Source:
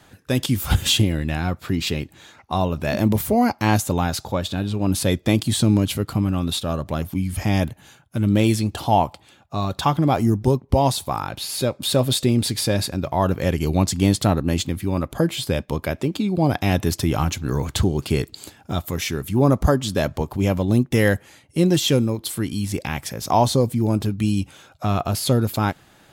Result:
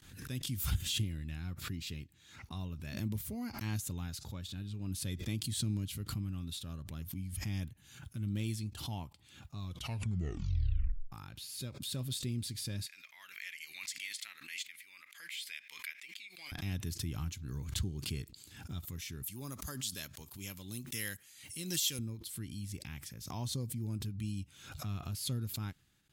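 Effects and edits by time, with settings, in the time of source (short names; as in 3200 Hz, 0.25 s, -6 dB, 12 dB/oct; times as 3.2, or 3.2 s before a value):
9.59 tape stop 1.53 s
12.86–16.52 resonant high-pass 2100 Hz, resonance Q 4.8
19.23–21.99 tilt +3.5 dB/oct
whole clip: passive tone stack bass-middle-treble 6-0-2; gate with hold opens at -59 dBFS; backwards sustainer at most 71 dB/s; gain -2 dB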